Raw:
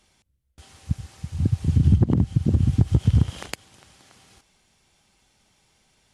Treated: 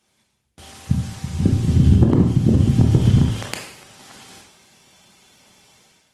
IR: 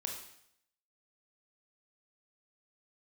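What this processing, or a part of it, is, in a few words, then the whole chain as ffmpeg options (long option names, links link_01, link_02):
far-field microphone of a smart speaker: -filter_complex "[1:a]atrim=start_sample=2205[link_01];[0:a][link_01]afir=irnorm=-1:irlink=0,highpass=120,dynaudnorm=framelen=140:gausssize=5:maxgain=11.5dB" -ar 48000 -c:a libopus -b:a 20k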